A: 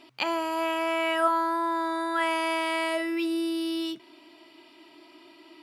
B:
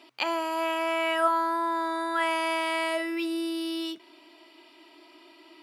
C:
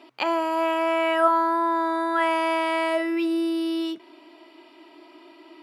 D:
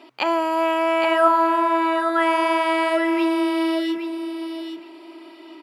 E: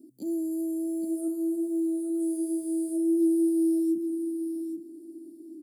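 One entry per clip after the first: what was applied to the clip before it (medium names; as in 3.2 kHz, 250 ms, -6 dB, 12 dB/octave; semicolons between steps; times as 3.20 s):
high-pass 300 Hz 12 dB/octave
treble shelf 2.2 kHz -10.5 dB; trim +6.5 dB
feedback delay 819 ms, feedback 18%, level -7.5 dB; trim +3 dB
elliptic band-stop 280–8800 Hz, stop band 60 dB; trim +4 dB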